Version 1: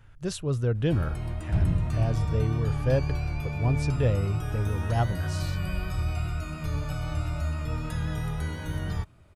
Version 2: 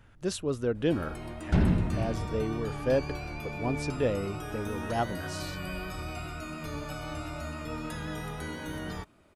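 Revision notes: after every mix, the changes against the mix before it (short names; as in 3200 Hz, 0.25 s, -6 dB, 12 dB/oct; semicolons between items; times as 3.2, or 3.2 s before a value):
second sound +11.0 dB; master: add resonant low shelf 170 Hz -10.5 dB, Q 1.5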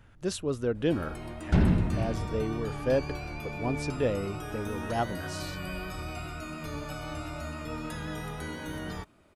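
reverb: on, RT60 0.50 s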